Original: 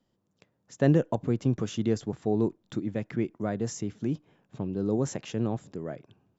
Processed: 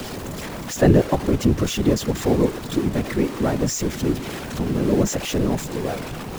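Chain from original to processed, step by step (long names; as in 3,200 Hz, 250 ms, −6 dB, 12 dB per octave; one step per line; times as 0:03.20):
converter with a step at zero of −31.5 dBFS
random phases in short frames
level +6.5 dB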